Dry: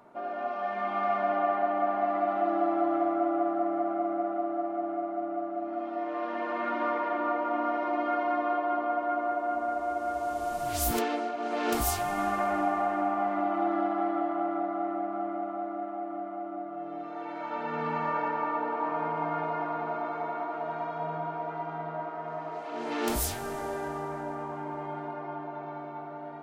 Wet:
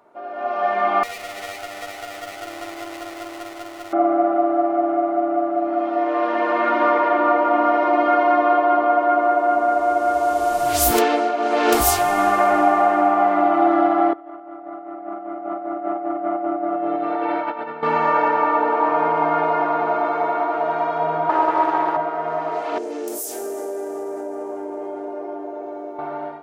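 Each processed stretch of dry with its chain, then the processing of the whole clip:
0:01.03–0:03.93: lower of the sound and its delayed copy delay 0.36 ms + first-order pre-emphasis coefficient 0.9 + notch filter 1,600 Hz, Q 6
0:14.13–0:17.83: compressor whose output falls as the input rises −38 dBFS, ratio −0.5 + moving average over 6 samples
0:21.29–0:21.97: RIAA equalisation recording + hollow resonant body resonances 330/900/1,700 Hz, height 16 dB, ringing for 65 ms + highs frequency-modulated by the lows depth 0.21 ms
0:22.78–0:25.99: high-pass filter 280 Hz 24 dB per octave + flat-topped bell 1,900 Hz −14 dB 2.8 octaves + downward compressor, threshold −37 dBFS
whole clip: low shelf with overshoot 280 Hz −6 dB, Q 1.5; automatic gain control gain up to 12 dB

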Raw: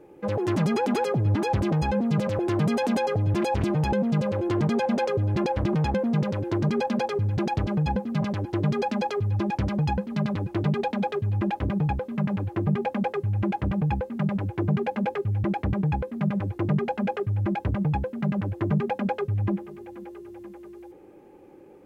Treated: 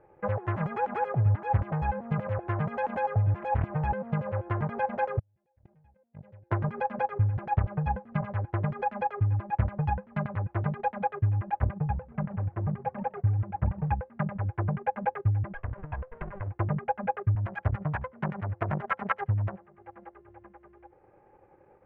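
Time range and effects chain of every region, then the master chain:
0:05.19–0:06.51: noise gate −19 dBFS, range −36 dB + parametric band 1,200 Hz −13 dB 0.9 octaves + level that may fall only so fast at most 34 dB per second
0:11.78–0:13.89: parametric band 2,100 Hz −6 dB 3 octaves + feedback echo with a swinging delay time 129 ms, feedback 37%, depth 212 cents, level −15.5 dB
0:15.54–0:16.52: lower of the sound and its delayed copy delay 1.9 ms + downward compressor 8 to 1, threshold −29 dBFS
0:17.35–0:20.14: phase distortion by the signal itself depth 0.76 ms + high-pass filter 81 Hz + single-tap delay 77 ms −22.5 dB
whole clip: drawn EQ curve 110 Hz 0 dB, 290 Hz −16 dB, 650 Hz −1 dB, 3,100 Hz −4 dB, 4,900 Hz −15 dB, 9,200 Hz −22 dB; transient designer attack +7 dB, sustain −7 dB; high shelf with overshoot 2,600 Hz −13 dB, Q 1.5; level −2 dB

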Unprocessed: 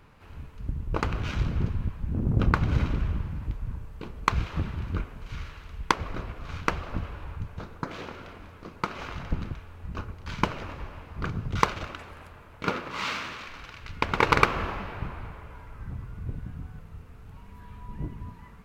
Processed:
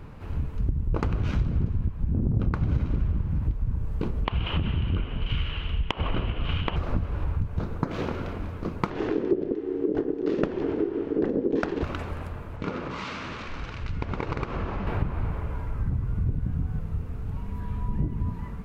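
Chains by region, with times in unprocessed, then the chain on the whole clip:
0:04.25–0:06.76: dynamic equaliser 880 Hz, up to +7 dB, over −41 dBFS, Q 1.3 + downward compressor, threshold −28 dBFS + low-pass with resonance 3,000 Hz, resonance Q 10
0:08.90–0:11.83: low-pass filter 6,200 Hz + low-shelf EQ 110 Hz +11 dB + ring modulation 370 Hz
0:12.56–0:14.87: low-pass filter 7,800 Hz 24 dB per octave + downward compressor 3 to 1, threshold −40 dBFS
whole clip: tilt shelving filter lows +6 dB, about 700 Hz; downward compressor 5 to 1, threshold −31 dBFS; level +8.5 dB

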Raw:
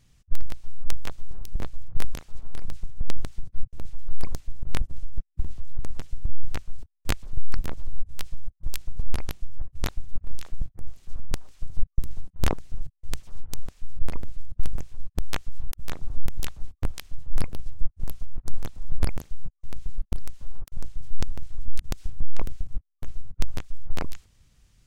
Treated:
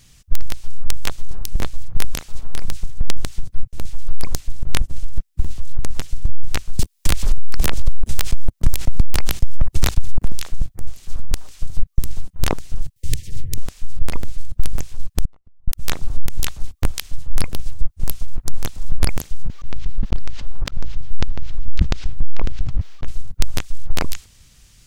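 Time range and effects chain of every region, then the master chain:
0:06.79–0:10.32: leveller curve on the samples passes 3 + multiband upward and downward compressor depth 70%
0:12.96–0:13.58: linear-phase brick-wall band-stop 540–1,700 Hz + parametric band 110 Hz +12 dB 1.3 octaves + multiband upward and downward compressor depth 40%
0:15.25–0:15.68: Savitzky-Golay smoothing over 65 samples + gate with flip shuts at −24 dBFS, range −33 dB
0:19.43–0:23.08: high-frequency loss of the air 190 metres + level that may fall only so fast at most 94 dB per second
whole clip: high-shelf EQ 2,100 Hz +9 dB; downward compressor, threshold −13 dBFS; boost into a limiter +9 dB; level −1 dB

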